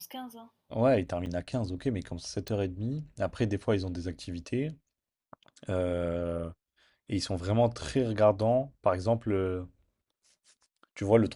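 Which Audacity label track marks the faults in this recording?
1.260000	1.260000	dropout 4.4 ms
2.480000	2.480000	pop

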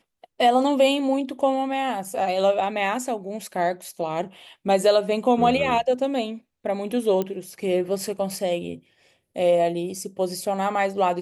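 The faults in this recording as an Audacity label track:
7.220000	7.220000	pop -14 dBFS

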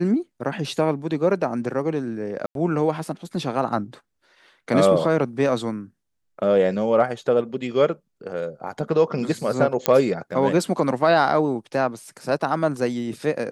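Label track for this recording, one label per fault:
2.460000	2.550000	dropout 92 ms
9.860000	9.860000	pop -2 dBFS

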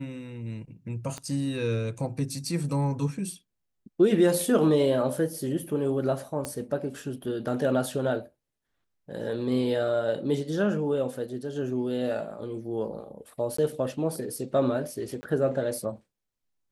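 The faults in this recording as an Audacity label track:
1.180000	1.180000	pop -22 dBFS
6.450000	6.450000	pop -17 dBFS
13.570000	13.580000	dropout 14 ms
15.210000	15.230000	dropout 20 ms

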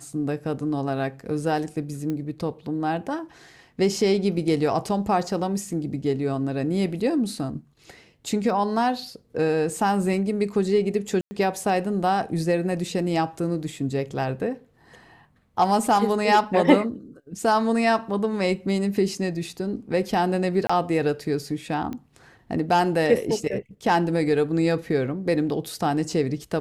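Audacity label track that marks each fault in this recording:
2.100000	2.100000	pop -18 dBFS
11.210000	11.310000	dropout 100 ms
20.670000	20.700000	dropout 25 ms
21.930000	21.930000	pop -21 dBFS

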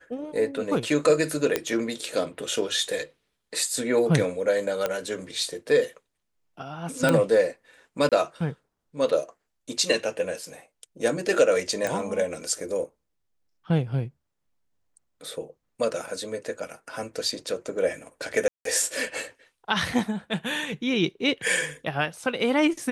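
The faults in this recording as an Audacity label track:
1.560000	1.560000	pop -8 dBFS
4.860000	4.860000	pop -11 dBFS
7.090000	7.090000	pop -9 dBFS
8.090000	8.120000	dropout 27 ms
11.870000	11.870000	pop
18.480000	18.650000	dropout 173 ms

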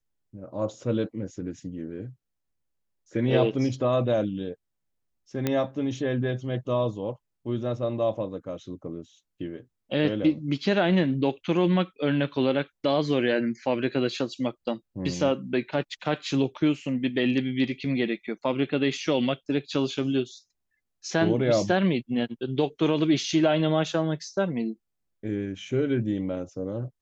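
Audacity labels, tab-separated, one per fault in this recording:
5.470000	5.470000	pop -11 dBFS

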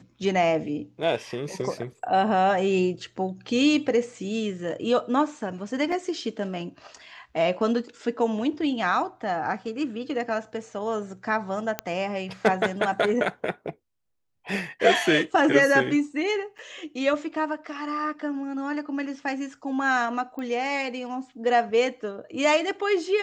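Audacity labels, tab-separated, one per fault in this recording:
5.920000	5.920000	dropout 3.9 ms
11.790000	11.790000	pop -10 dBFS
16.580000	16.590000	dropout 5.8 ms
20.390000	20.390000	pop -24 dBFS

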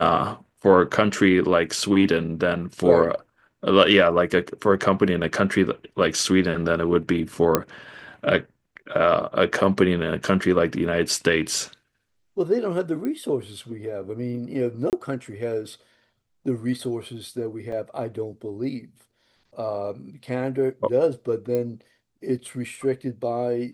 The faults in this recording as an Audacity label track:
7.550000	7.550000	pop -3 dBFS
13.050000	13.050000	pop -19 dBFS
14.900000	14.930000	dropout 28 ms
17.720000	17.720000	dropout 3.3 ms
21.550000	21.550000	pop -15 dBFS

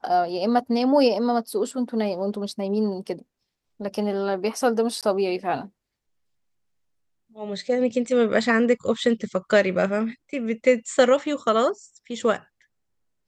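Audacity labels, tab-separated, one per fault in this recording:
5.010000	5.030000	dropout 17 ms

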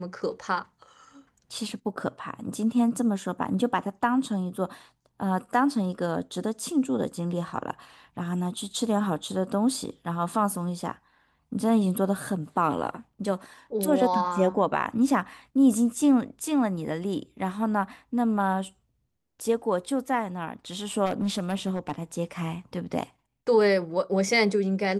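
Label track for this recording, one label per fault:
21.050000	21.920000	clipped -22.5 dBFS

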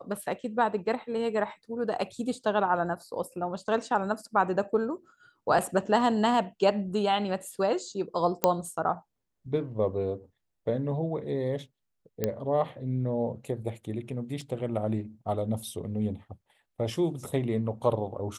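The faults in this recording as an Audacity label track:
8.440000	8.440000	pop -7 dBFS
12.240000	12.240000	pop -13 dBFS
14.410000	14.410000	dropout 2.6 ms

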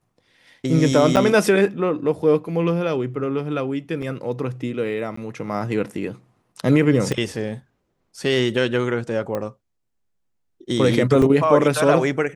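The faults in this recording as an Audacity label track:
1.160000	1.170000	dropout 8.3 ms
4.020000	4.020000	dropout 4.6 ms
5.160000	5.170000	dropout 14 ms
7.120000	7.120000	pop -12 dBFS
9.350000	9.350000	pop -14 dBFS
11.220000	11.220000	dropout 2.2 ms

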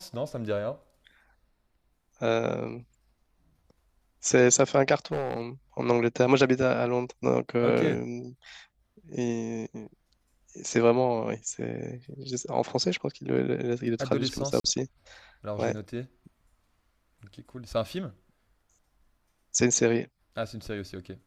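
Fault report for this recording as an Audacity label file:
5.050000	5.420000	clipped -24 dBFS
14.600000	14.640000	dropout 43 ms

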